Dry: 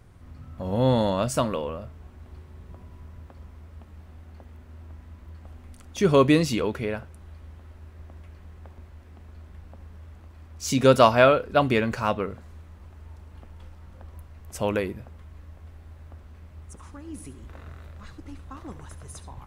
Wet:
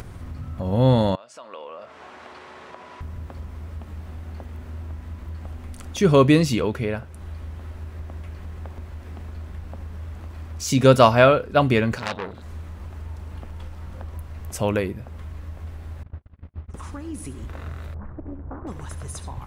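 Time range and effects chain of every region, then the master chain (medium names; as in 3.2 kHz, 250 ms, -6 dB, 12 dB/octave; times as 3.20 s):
1.15–3.01 s: compression 12:1, threshold -38 dBFS + high-pass 630 Hz + distance through air 92 m
11.98–12.42 s: peaking EQ 3.8 kHz +14.5 dB 0.43 oct + transformer saturation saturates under 3.4 kHz
16.03–16.74 s: distance through air 280 m + gate -43 dBFS, range -47 dB
17.94–18.67 s: Bessel low-pass 830 Hz, order 4 + flutter echo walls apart 11.7 m, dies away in 0.35 s + loudspeaker Doppler distortion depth 0.63 ms
whole clip: upward compressor, threshold -29 dBFS; dynamic bell 110 Hz, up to +5 dB, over -38 dBFS, Q 1; trim +2 dB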